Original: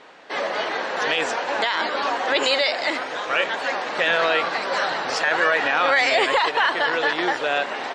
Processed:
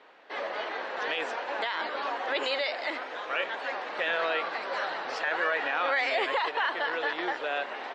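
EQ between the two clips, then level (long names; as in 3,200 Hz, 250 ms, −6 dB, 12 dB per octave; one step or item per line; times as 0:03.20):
three-way crossover with the lows and the highs turned down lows −14 dB, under 250 Hz, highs −13 dB, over 4,400 Hz
low-shelf EQ 66 Hz +9 dB
−8.5 dB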